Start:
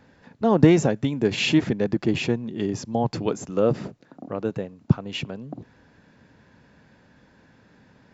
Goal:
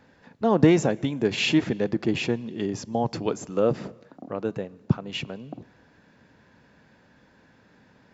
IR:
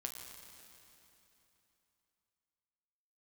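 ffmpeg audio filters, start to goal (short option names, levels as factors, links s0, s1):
-filter_complex "[0:a]lowshelf=f=210:g=-4.5,asplit=2[s0][s1];[1:a]atrim=start_sample=2205,afade=t=out:st=0.44:d=0.01,atrim=end_sample=19845,lowpass=6700[s2];[s1][s2]afir=irnorm=-1:irlink=0,volume=0.178[s3];[s0][s3]amix=inputs=2:normalize=0,volume=0.841"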